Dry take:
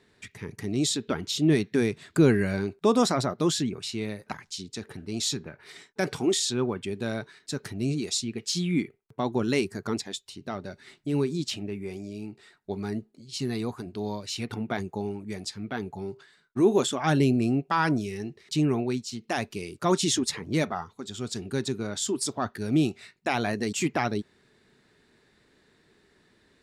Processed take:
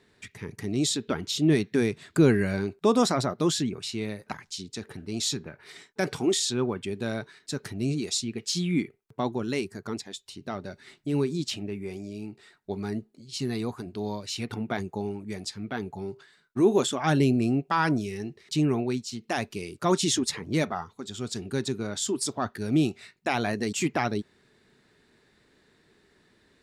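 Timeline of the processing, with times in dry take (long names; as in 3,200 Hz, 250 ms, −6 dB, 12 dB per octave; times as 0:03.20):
0:09.34–0:10.19: clip gain −4 dB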